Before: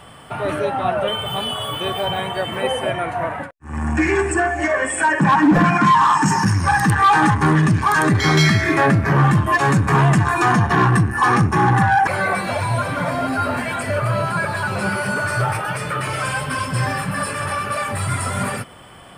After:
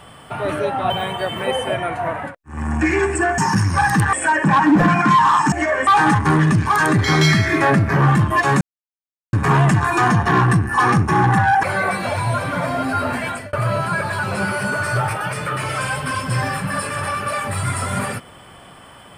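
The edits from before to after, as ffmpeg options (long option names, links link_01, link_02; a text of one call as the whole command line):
ffmpeg -i in.wav -filter_complex "[0:a]asplit=8[link_01][link_02][link_03][link_04][link_05][link_06][link_07][link_08];[link_01]atrim=end=0.902[link_09];[link_02]atrim=start=2.058:end=4.542[link_10];[link_03]atrim=start=6.278:end=7.032[link_11];[link_04]atrim=start=4.888:end=6.282[link_12];[link_05]atrim=start=4.538:end=4.892[link_13];[link_06]atrim=start=7.028:end=9.77,asetpts=PTS-STARTPTS,afade=type=out:start_time=2.738:duration=0.004:curve=hsin,apad=pad_dur=0.72[link_14];[link_07]atrim=start=9.77:end=13.97,asetpts=PTS-STARTPTS,afade=type=in:duration=0.004:curve=hsin,afade=type=out:start_time=3.95:duration=0.25[link_15];[link_08]atrim=start=13.97,asetpts=PTS-STARTPTS,afade=type=in:duration=0.004:curve=hsin[link_16];[link_09][link_10]acrossfade=duration=0.004:curve1=hsin:curve2=hsin[link_17];[link_17][link_11]acrossfade=duration=0.004:curve1=hsin:curve2=hsin[link_18];[link_18][link_12]acrossfade=duration=0.004:curve1=hsin:curve2=hsin[link_19];[link_19][link_13]acrossfade=duration=0.004:curve1=hsin:curve2=hsin[link_20];[link_14][link_15][link_16]concat=n=3:v=0:a=1[link_21];[link_20][link_21]acrossfade=duration=0.004:curve1=hsin:curve2=hsin" out.wav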